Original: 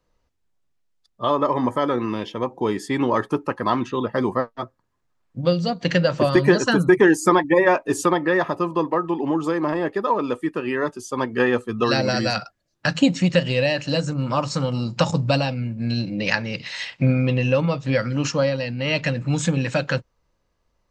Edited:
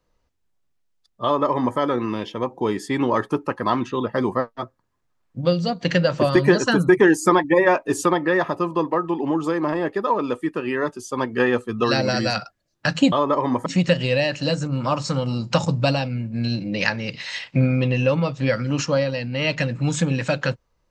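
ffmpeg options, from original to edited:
ffmpeg -i in.wav -filter_complex "[0:a]asplit=3[link_01][link_02][link_03];[link_01]atrim=end=13.122[link_04];[link_02]atrim=start=1.238:end=1.782[link_05];[link_03]atrim=start=13.118[link_06];[link_04][link_05]acrossfade=duration=0.004:curve1=hsin:curve2=hsin[link_07];[link_07][link_06]acrossfade=duration=0.004:curve1=hsin:curve2=hsin" out.wav

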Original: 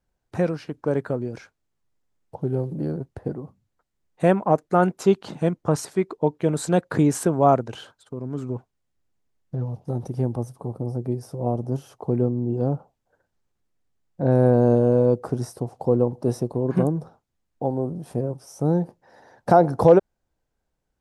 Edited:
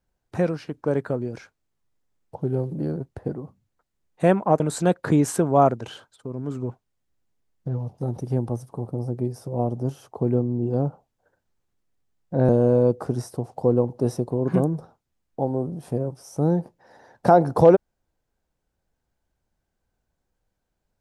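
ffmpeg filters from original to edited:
ffmpeg -i in.wav -filter_complex "[0:a]asplit=3[link_01][link_02][link_03];[link_01]atrim=end=4.602[link_04];[link_02]atrim=start=6.468:end=14.362[link_05];[link_03]atrim=start=14.718[link_06];[link_04][link_05]acrossfade=duration=0.004:curve1=hsin:curve2=hsin[link_07];[link_07][link_06]acrossfade=duration=0.004:curve1=hsin:curve2=hsin" out.wav

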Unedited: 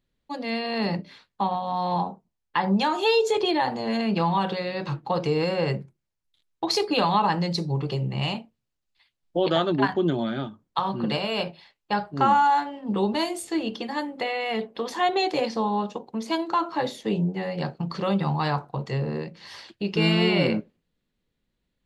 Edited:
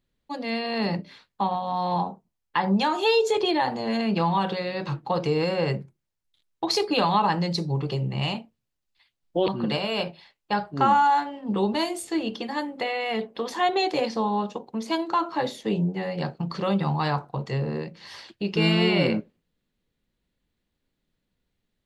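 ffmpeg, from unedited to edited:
ffmpeg -i in.wav -filter_complex "[0:a]asplit=2[link_01][link_02];[link_01]atrim=end=9.482[link_03];[link_02]atrim=start=10.878[link_04];[link_03][link_04]acrossfade=duration=0.004:curve1=hsin:curve2=hsin" out.wav

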